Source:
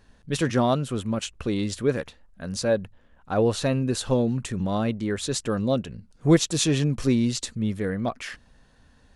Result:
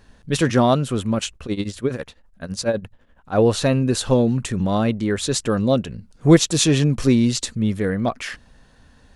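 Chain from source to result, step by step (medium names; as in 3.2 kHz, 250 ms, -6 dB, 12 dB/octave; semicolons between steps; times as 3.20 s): 1.33–3.36 s: tremolo triangle 12 Hz, depth 95% -> 75%; trim +5.5 dB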